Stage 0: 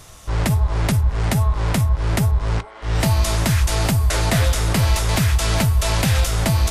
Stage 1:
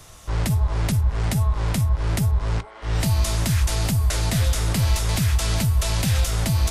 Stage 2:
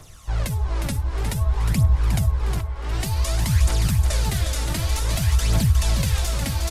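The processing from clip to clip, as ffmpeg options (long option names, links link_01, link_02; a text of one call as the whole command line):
ffmpeg -i in.wav -filter_complex "[0:a]acrossover=split=250|3000[link_01][link_02][link_03];[link_02]acompressor=threshold=-28dB:ratio=6[link_04];[link_01][link_04][link_03]amix=inputs=3:normalize=0,volume=-2.5dB" out.wav
ffmpeg -i in.wav -af "aphaser=in_gain=1:out_gain=1:delay=3.7:decay=0.57:speed=0.54:type=triangular,aecho=1:1:360|720|1080|1440:0.473|0.132|0.0371|0.0104,volume=-4dB" out.wav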